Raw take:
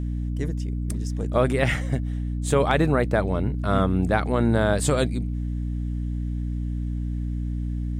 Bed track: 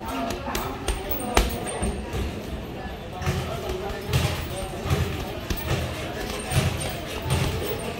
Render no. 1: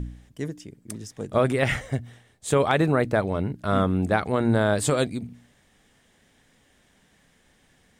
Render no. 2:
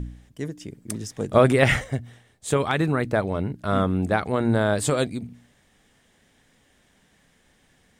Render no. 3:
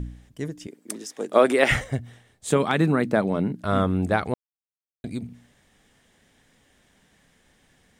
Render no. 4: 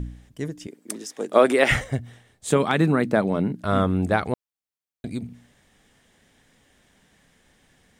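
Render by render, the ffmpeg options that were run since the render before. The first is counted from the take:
-af "bandreject=f=60:t=h:w=4,bandreject=f=120:t=h:w=4,bandreject=f=180:t=h:w=4,bandreject=f=240:t=h:w=4,bandreject=f=300:t=h:w=4"
-filter_complex "[0:a]asettb=1/sr,asplit=3[a][b][c];[a]atrim=end=2.564[d];[b]atrim=start=2.56:end=3.09,asetpts=PTS-STARTPTS,afade=t=in:d=0.004:c=qsin,afade=t=out:st=0.526:d=0.004:c=qsin,equalizer=f=600:t=o:w=0.91:g=-6.5[e];[c]atrim=start=3.086[f];[d][e]acrossfade=d=0.004:c1=hsin:c2=qsin[g];[g][f]acrossfade=d=0.004:c1=qsin:c2=hsin,asplit=3[h][i][j];[h]atrim=end=0.612[k];[i]atrim=start=0.608:end=1.842,asetpts=PTS-STARTPTS,volume=5dB[l];[j]atrim=start=1.838[m];[k][l]acrossfade=d=0.004:c1=hsin:c2=hsin[n];[n][m]acrossfade=d=0.004:c1=hsin:c2=hsin"
-filter_complex "[0:a]asettb=1/sr,asplit=3[a][b][c];[a]atrim=end=0.674[d];[b]atrim=start=0.67:end=1.71,asetpts=PTS-STARTPTS,afade=t=in:d=0.004:c=qsin,afade=t=out:st=1.036:d=0.004:c=qsin,highpass=f=260:w=0.5412,highpass=f=260:w=1.3066[e];[c]atrim=start=1.706[f];[d][e]acrossfade=d=0.004:c1=hsin:c2=qsin[g];[g][f]acrossfade=d=0.004:c1=qsin:c2=hsin,asettb=1/sr,asplit=3[h][i][j];[h]atrim=end=2.504[k];[i]atrim=start=2.5:end=3.64,asetpts=PTS-STARTPTS,afade=t=in:d=0.004:c=qsin,afade=t=out:st=1.136:d=0.004:c=qsin,highpass=f=190:t=q:w=1.9[l];[j]atrim=start=3.636[m];[k][l]acrossfade=d=0.004:c1=hsin:c2=qsin[n];[n][m]acrossfade=d=0.004:c1=qsin:c2=hsin,asplit=3[o][p][q];[o]atrim=end=4.34,asetpts=PTS-STARTPTS,afade=t=out:st=4.336:d=0.004:c=hsin[r];[p]atrim=start=4.34:end=5.04,asetpts=PTS-STARTPTS,volume=0[s];[q]atrim=start=5.04,asetpts=PTS-STARTPTS,afade=t=in:d=0.004:c=hsin[t];[r][s][t]concat=n=3:v=0:a=1"
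-af "volume=1dB,alimiter=limit=-3dB:level=0:latency=1"

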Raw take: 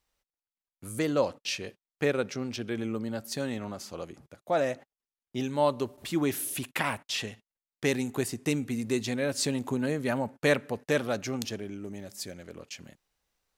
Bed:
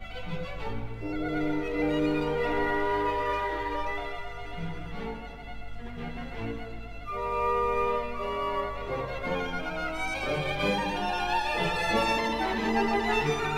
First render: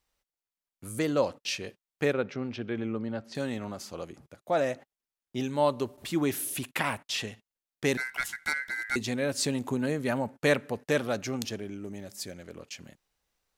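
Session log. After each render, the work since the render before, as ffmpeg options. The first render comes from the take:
-filter_complex "[0:a]asettb=1/sr,asplit=3[a][b][c];[a]atrim=end=2.134[d];[b]atrim=start=2.13:end=3.35,asetpts=PTS-STARTPTS,afade=t=in:d=0.004:c=qsin,afade=t=out:st=1.216:d=0.004:c=qsin,lowpass=3k[e];[c]atrim=start=3.346[f];[d][e]acrossfade=d=0.004:c1=hsin:c2=qsin[g];[g][f]acrossfade=d=0.004:c1=qsin:c2=hsin,asettb=1/sr,asplit=3[h][i][j];[h]atrim=end=7.974[k];[i]atrim=start=7.97:end=8.96,asetpts=PTS-STARTPTS,afade=t=in:d=0.004:c=qsin,afade=t=out:st=0.986:d=0.004:c=qsin,aeval=exprs='val(0)*sin(2*PI*1800*n/s)':c=same[l];[j]atrim=start=8.956[m];[k][l]acrossfade=d=0.004:c1=hsin:c2=qsin[n];[n][m]acrossfade=d=0.004:c1=qsin:c2=hsin"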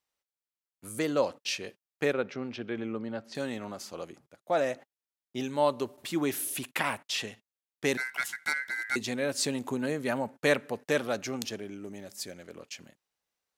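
-af "agate=range=-6dB:threshold=-47dB:ratio=16:detection=peak,highpass=f=220:p=1"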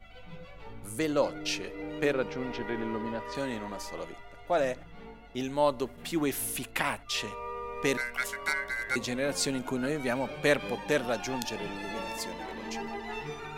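-filter_complex "[1:a]volume=-11.5dB[a];[0:a][a]amix=inputs=2:normalize=0"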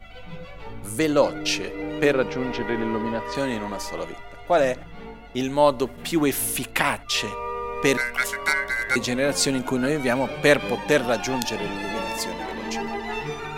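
-af "volume=8dB"

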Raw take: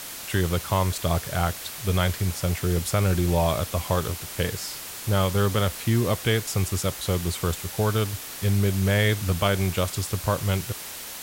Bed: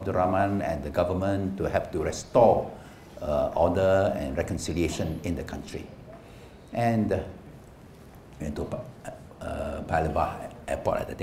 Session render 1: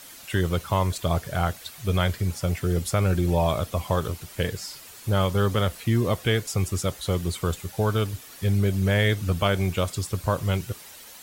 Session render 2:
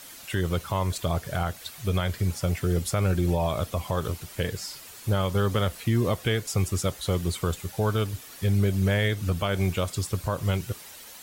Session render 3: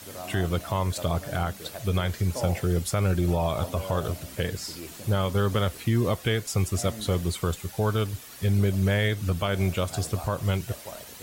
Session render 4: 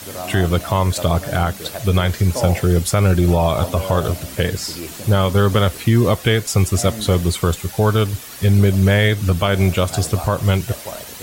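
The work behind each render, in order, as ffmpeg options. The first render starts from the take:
-af "afftdn=nr=10:nf=-37"
-af "alimiter=limit=-14.5dB:level=0:latency=1:release=158"
-filter_complex "[1:a]volume=-15dB[a];[0:a][a]amix=inputs=2:normalize=0"
-af "volume=9.5dB"

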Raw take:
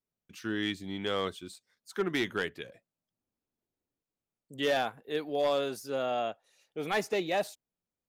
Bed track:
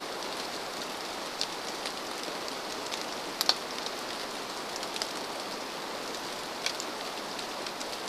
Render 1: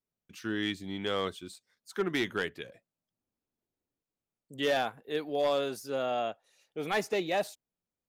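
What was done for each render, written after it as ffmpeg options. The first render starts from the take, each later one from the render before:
-af anull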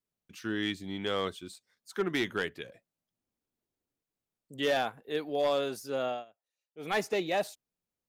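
-filter_complex "[0:a]asplit=3[a][b][c];[a]atrim=end=6.25,asetpts=PTS-STARTPTS,afade=t=out:st=6.07:d=0.18:silence=0.0668344[d];[b]atrim=start=6.25:end=6.74,asetpts=PTS-STARTPTS,volume=-23.5dB[e];[c]atrim=start=6.74,asetpts=PTS-STARTPTS,afade=t=in:d=0.18:silence=0.0668344[f];[d][e][f]concat=n=3:v=0:a=1"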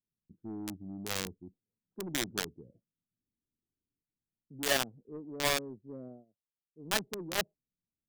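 -filter_complex "[0:a]acrossover=split=360[a][b];[a]asoftclip=type=tanh:threshold=-35.5dB[c];[b]acrusher=bits=3:mix=0:aa=0.000001[d];[c][d]amix=inputs=2:normalize=0"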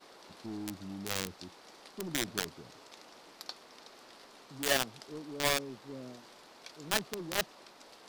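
-filter_complex "[1:a]volume=-18.5dB[a];[0:a][a]amix=inputs=2:normalize=0"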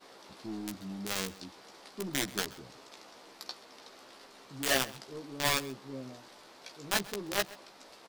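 -filter_complex "[0:a]asplit=2[a][b];[b]adelay=15,volume=-5dB[c];[a][c]amix=inputs=2:normalize=0,aecho=1:1:131:0.1"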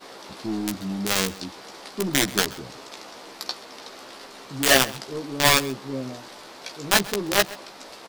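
-af "volume=11.5dB,alimiter=limit=-2dB:level=0:latency=1"

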